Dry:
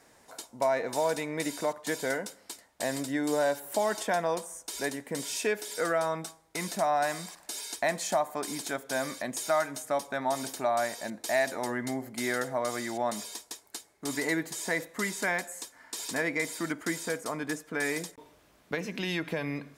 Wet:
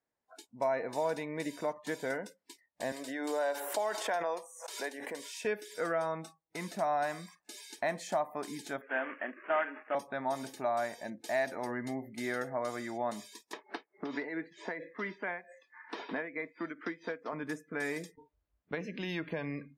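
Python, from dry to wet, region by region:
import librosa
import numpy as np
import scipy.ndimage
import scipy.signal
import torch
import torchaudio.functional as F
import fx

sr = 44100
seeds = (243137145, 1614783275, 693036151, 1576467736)

y = fx.chain(x, sr, fx.highpass(hz=440.0, slope=12),
    fx.pre_swell(db_per_s=31.0), at=(2.92, 5.45))
y = fx.chain(y, sr, fx.cvsd(bps=16000),
    fx.highpass(hz=260.0, slope=24),
    fx.peak_eq(hz=1700.0, db=8.5, octaves=0.73), at=(8.81, 9.95))
y = fx.chain(y, sr, fx.bandpass_edges(low_hz=230.0, high_hz=3900.0),
    fx.tremolo(hz=4.5, depth=0.65),
    fx.band_squash(depth_pct=100), at=(13.53, 17.33))
y = fx.noise_reduce_blind(y, sr, reduce_db=25)
y = fx.high_shelf(y, sr, hz=4600.0, db=-11.0)
y = F.gain(torch.from_numpy(y), -4.0).numpy()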